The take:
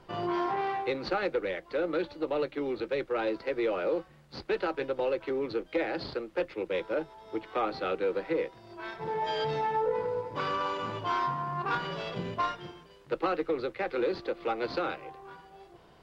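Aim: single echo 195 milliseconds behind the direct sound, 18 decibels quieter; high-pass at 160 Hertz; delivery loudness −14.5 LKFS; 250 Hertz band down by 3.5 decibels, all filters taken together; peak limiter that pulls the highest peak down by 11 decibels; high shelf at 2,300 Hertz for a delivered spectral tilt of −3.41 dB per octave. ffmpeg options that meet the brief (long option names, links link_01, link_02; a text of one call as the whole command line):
ffmpeg -i in.wav -af "highpass=160,equalizer=frequency=250:width_type=o:gain=-5,highshelf=frequency=2300:gain=-7.5,alimiter=level_in=7dB:limit=-24dB:level=0:latency=1,volume=-7dB,aecho=1:1:195:0.126,volume=25.5dB" out.wav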